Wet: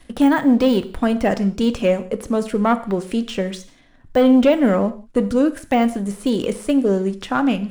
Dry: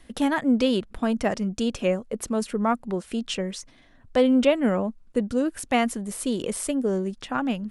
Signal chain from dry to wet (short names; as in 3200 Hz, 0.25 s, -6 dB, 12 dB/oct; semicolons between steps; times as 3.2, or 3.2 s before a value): de-esser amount 95%; sample leveller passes 1; non-linear reverb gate 0.2 s falling, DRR 10.5 dB; gain +3.5 dB